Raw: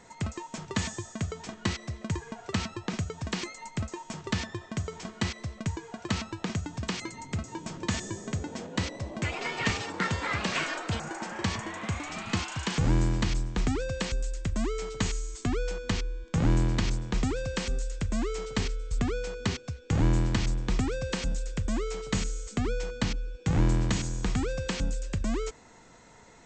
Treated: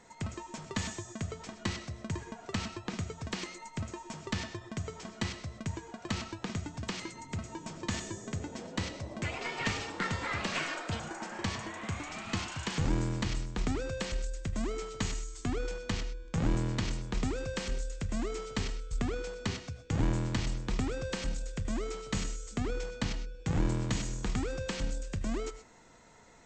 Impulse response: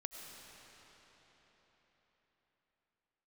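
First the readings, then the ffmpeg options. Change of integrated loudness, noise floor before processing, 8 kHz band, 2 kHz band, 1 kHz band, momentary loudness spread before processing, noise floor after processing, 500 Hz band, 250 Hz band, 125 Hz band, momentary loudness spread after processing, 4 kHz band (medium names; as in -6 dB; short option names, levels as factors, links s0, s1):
-4.5 dB, -52 dBFS, -4.0 dB, -4.0 dB, -4.0 dB, 9 LU, -52 dBFS, -4.0 dB, -4.5 dB, -5.0 dB, 8 LU, -4.0 dB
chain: -filter_complex "[0:a]bandreject=f=60:t=h:w=6,bandreject=f=120:t=h:w=6,bandreject=f=180:t=h:w=6[s0];[1:a]atrim=start_sample=2205,afade=t=out:st=0.18:d=0.01,atrim=end_sample=8379[s1];[s0][s1]afir=irnorm=-1:irlink=0,aeval=exprs='0.158*(cos(1*acos(clip(val(0)/0.158,-1,1)))-cos(1*PI/2))+0.0126*(cos(4*acos(clip(val(0)/0.158,-1,1)))-cos(4*PI/2))+0.002*(cos(6*acos(clip(val(0)/0.158,-1,1)))-cos(6*PI/2))':c=same"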